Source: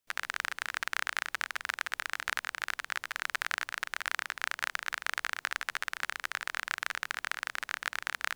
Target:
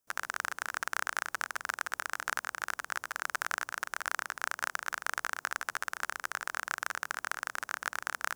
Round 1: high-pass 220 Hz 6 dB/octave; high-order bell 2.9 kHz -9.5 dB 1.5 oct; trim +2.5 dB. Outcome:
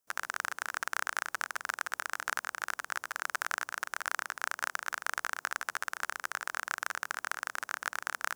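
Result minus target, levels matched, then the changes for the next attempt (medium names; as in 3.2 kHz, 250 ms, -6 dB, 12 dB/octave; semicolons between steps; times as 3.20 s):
125 Hz band -4.5 dB
change: high-pass 74 Hz 6 dB/octave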